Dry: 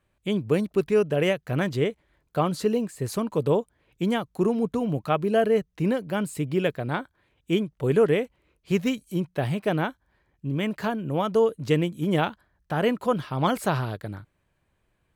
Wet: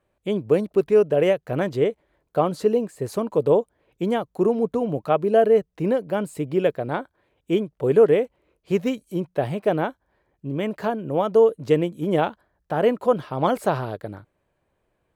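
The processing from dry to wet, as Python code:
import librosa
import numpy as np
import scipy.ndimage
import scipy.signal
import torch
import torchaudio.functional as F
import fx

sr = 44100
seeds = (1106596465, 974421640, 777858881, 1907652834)

y = fx.peak_eq(x, sr, hz=540.0, db=10.0, octaves=2.0)
y = y * librosa.db_to_amplitude(-4.0)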